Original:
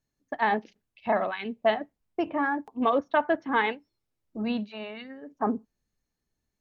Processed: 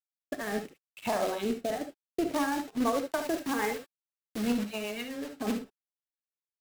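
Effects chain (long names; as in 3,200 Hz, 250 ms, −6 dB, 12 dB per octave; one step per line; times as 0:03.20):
treble cut that deepens with the level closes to 1,800 Hz, closed at −25 dBFS
0:01.21–0:01.71: octave-band graphic EQ 125/250/500/2,000/4,000 Hz +5/+6/+10/−11/+10 dB
brickwall limiter −20 dBFS, peak gain reduction 13 dB
downward compressor 1.5 to 1, threshold −40 dBFS, peak gain reduction 6 dB
log-companded quantiser 4 bits
rotating-speaker cabinet horn 0.8 Hz, later 8 Hz, at 0:01.90
0:03.21–0:04.47: bit-depth reduction 8 bits, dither none
reverb whose tail is shaped and stops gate 90 ms rising, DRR 6.5 dB
level +6 dB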